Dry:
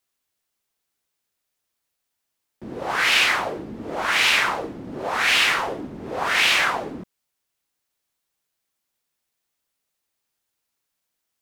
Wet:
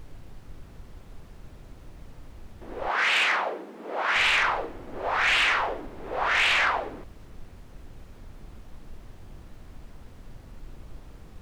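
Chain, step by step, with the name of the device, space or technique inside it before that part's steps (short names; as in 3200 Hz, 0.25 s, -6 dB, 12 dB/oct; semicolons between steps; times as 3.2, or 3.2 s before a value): aircraft cabin announcement (BPF 460–3000 Hz; soft clip -15 dBFS, distortion -17 dB; brown noise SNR 12 dB); 2.88–4.16 elliptic high-pass 180 Hz, stop band 40 dB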